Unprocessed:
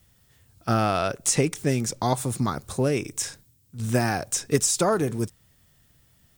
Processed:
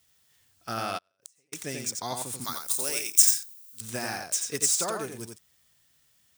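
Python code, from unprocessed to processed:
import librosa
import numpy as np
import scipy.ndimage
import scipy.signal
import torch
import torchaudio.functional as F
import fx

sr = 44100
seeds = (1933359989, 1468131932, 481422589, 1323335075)

y = scipy.signal.medfilt(x, 3)
y = fx.riaa(y, sr, side='recording', at=(2.44, 3.81))
y = y + 10.0 ** (-5.0 / 20.0) * np.pad(y, (int(88 * sr / 1000.0), 0))[:len(y)]
y = fx.gate_flip(y, sr, shuts_db=-19.0, range_db=-41, at=(0.97, 1.52), fade=0.02)
y = fx.tilt_eq(y, sr, slope=3.0)
y = y * librosa.db_to_amplitude(-8.5)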